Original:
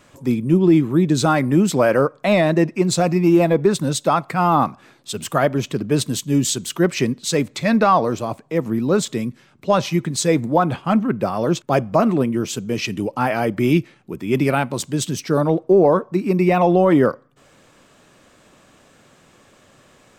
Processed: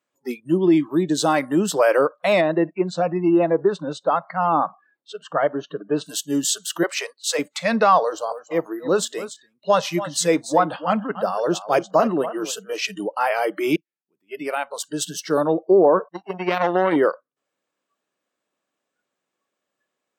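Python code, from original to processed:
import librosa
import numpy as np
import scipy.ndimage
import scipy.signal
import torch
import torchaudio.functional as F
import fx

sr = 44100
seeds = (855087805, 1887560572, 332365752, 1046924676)

y = fx.peak_eq(x, sr, hz=1400.0, db=-9.0, octaves=0.21, at=(0.52, 1.34))
y = fx.spacing_loss(y, sr, db_at_10k=25, at=(2.4, 6.03), fade=0.02)
y = fx.highpass(y, sr, hz=490.0, slope=24, at=(6.83, 7.39))
y = fx.echo_single(y, sr, ms=286, db=-12.0, at=(8.29, 12.76), fade=0.02)
y = fx.power_curve(y, sr, exponent=2.0, at=(16.08, 16.96))
y = fx.edit(y, sr, fx.fade_in_span(start_s=13.76, length_s=1.38), tone=tone)
y = fx.noise_reduce_blind(y, sr, reduce_db=28)
y = scipy.signal.sosfilt(scipy.signal.butter(2, 280.0, 'highpass', fs=sr, output='sos'), y)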